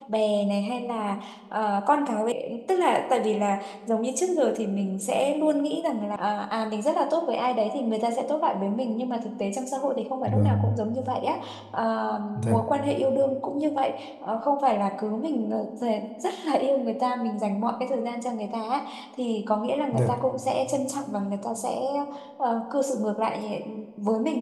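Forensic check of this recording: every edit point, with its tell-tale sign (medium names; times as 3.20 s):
2.32 s: sound stops dead
6.16 s: sound stops dead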